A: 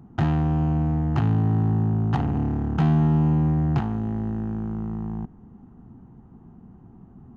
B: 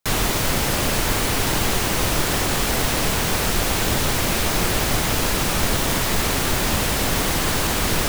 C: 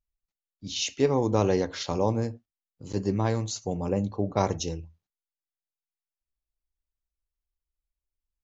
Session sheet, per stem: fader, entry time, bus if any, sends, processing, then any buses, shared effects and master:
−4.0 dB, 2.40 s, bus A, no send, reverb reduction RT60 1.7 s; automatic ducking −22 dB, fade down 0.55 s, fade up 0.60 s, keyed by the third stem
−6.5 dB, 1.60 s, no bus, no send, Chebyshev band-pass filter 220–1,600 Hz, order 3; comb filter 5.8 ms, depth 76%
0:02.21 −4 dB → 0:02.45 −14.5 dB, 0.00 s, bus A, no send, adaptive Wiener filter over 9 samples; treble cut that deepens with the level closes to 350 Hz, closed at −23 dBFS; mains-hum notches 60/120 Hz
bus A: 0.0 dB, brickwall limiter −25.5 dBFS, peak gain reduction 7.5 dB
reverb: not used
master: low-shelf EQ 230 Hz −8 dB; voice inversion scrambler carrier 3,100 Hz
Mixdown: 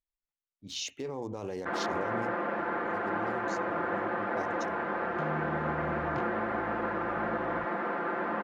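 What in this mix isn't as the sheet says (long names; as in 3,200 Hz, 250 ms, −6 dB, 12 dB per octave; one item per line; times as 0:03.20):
stem C: missing treble cut that deepens with the level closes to 350 Hz, closed at −23 dBFS
master: missing voice inversion scrambler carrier 3,100 Hz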